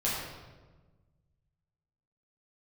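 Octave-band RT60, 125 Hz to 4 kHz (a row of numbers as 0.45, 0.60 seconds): 2.2, 1.8, 1.4, 1.2, 1.0, 0.90 seconds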